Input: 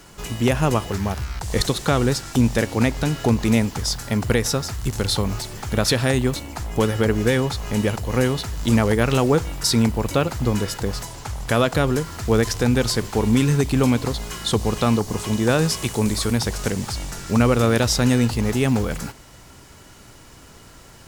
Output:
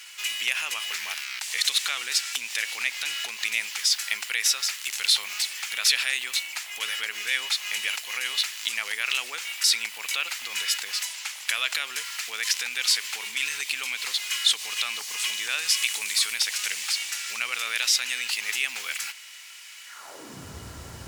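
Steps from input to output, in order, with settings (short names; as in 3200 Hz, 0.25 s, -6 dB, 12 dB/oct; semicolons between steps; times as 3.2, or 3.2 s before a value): limiter -14.5 dBFS, peak gain reduction 8 dB; high-pass sweep 2400 Hz -> 71 Hz, 19.85–20.54; gain +3.5 dB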